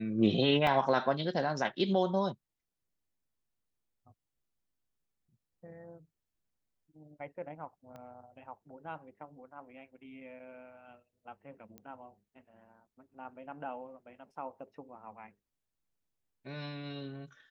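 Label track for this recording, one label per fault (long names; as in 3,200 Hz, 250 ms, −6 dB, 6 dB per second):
0.670000	0.670000	drop-out 2 ms
7.960000	7.960000	click −35 dBFS
11.780000	11.780000	click −32 dBFS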